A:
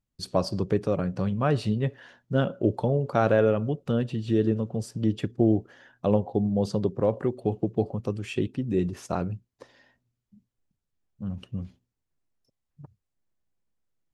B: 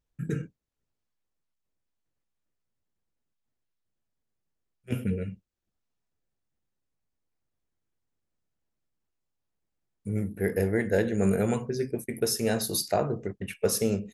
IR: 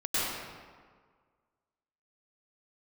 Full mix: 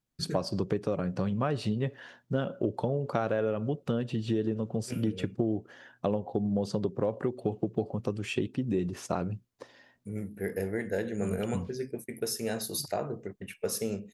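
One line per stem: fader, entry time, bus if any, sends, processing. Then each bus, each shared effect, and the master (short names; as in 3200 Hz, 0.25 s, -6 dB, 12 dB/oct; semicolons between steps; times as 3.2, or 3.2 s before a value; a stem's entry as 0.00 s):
+1.5 dB, 0.00 s, no send, dry
-5.0 dB, 0.00 s, no send, dry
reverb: off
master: low shelf 70 Hz -11.5 dB; compressor, threshold -25 dBFS, peak gain reduction 10 dB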